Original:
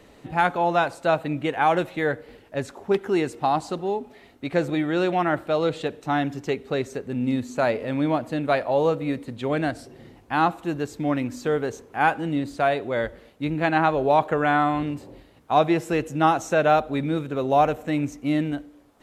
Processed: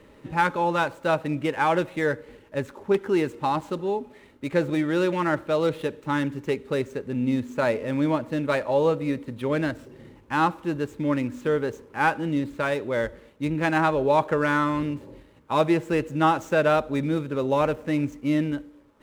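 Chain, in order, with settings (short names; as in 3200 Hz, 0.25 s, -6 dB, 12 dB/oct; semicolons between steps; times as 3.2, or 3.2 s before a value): median filter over 9 samples; Butterworth band-stop 720 Hz, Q 5.1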